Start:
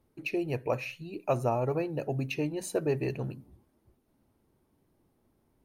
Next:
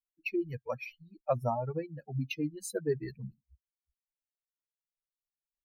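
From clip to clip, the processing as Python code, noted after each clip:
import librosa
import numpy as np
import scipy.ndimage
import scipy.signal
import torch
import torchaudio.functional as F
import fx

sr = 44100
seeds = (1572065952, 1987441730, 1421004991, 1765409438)

y = fx.bin_expand(x, sr, power=3.0)
y = F.gain(torch.from_numpy(y), 2.0).numpy()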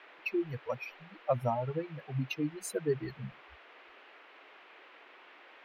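y = fx.dmg_noise_band(x, sr, seeds[0], low_hz=320.0, high_hz=2700.0, level_db=-56.0)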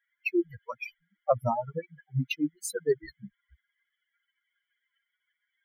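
y = fx.bin_expand(x, sr, power=3.0)
y = F.gain(torch.from_numpy(y), 8.0).numpy()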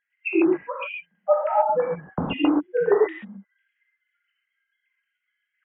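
y = fx.sine_speech(x, sr)
y = fx.dynamic_eq(y, sr, hz=1000.0, q=2.4, threshold_db=-43.0, ratio=4.0, max_db=3)
y = fx.rev_gated(y, sr, seeds[1], gate_ms=160, shape='flat', drr_db=-3.5)
y = F.gain(torch.from_numpy(y), 3.0).numpy()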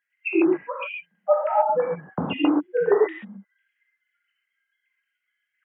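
y = scipy.signal.sosfilt(scipy.signal.butter(2, 110.0, 'highpass', fs=sr, output='sos'), x)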